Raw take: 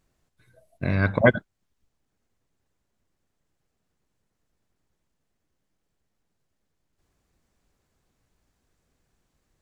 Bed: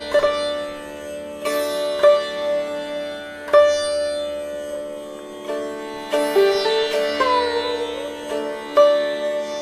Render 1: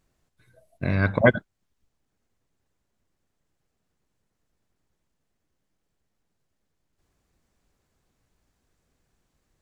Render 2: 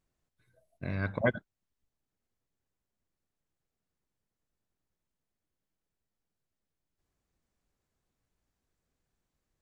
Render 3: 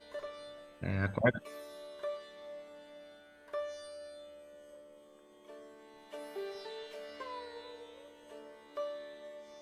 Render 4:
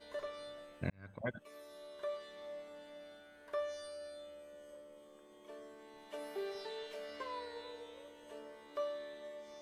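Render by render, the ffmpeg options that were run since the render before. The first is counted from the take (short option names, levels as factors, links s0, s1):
-af anull
-af "volume=0.299"
-filter_complex "[1:a]volume=0.0501[s0];[0:a][s0]amix=inputs=2:normalize=0"
-filter_complex "[0:a]asplit=2[s0][s1];[s0]atrim=end=0.9,asetpts=PTS-STARTPTS,afade=t=out:st=0.896:d=0.004:c=hsin[s2];[s1]atrim=start=0.9,asetpts=PTS-STARTPTS,afade=t=in:d=1.46[s3];[s2][s3]concat=n=2:v=0:a=1"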